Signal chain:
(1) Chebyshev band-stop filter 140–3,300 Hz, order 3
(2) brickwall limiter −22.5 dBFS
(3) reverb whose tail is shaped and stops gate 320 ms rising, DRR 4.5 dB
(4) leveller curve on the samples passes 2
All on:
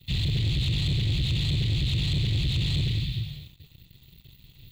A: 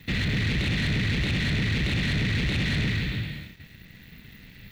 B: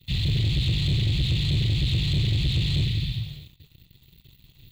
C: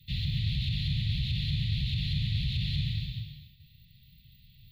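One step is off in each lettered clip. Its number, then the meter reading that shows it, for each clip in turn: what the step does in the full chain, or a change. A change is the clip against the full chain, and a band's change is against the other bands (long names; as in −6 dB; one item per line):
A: 1, 2 kHz band +10.0 dB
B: 2, change in momentary loudness spread +1 LU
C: 4, change in crest factor +4.5 dB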